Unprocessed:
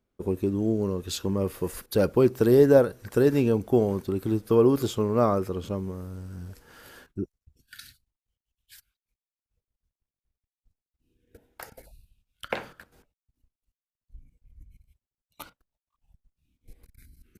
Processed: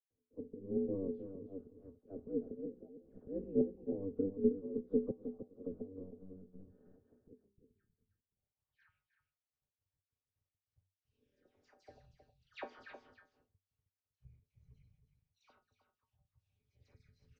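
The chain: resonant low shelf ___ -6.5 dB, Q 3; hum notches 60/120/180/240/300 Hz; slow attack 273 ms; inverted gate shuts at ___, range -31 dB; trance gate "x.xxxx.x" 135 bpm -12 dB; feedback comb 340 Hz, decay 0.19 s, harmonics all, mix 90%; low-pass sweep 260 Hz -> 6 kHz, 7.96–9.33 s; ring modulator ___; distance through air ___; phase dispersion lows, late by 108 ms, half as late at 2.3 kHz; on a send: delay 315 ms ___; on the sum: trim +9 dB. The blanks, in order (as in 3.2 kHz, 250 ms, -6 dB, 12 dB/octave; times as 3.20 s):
320 Hz, -14 dBFS, 95 Hz, 180 m, -9.5 dB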